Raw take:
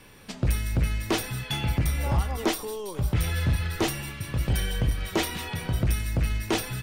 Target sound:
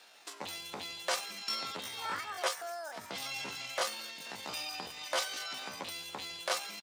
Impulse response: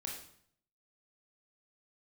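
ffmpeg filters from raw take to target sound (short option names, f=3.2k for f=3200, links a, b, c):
-af "highpass=490,lowpass=6k,aecho=1:1:474|948|1422:0.0668|0.0267|0.0107,asetrate=70004,aresample=44100,atempo=0.629961,volume=-3dB"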